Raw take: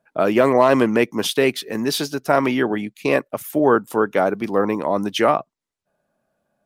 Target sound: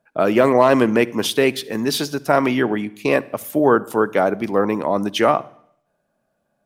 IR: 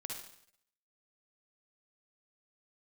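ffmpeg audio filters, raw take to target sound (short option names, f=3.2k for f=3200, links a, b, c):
-filter_complex "[0:a]asplit=2[a][b];[1:a]atrim=start_sample=2205,lowshelf=f=230:g=11[c];[b][c]afir=irnorm=-1:irlink=0,volume=-16.5dB[d];[a][d]amix=inputs=2:normalize=0"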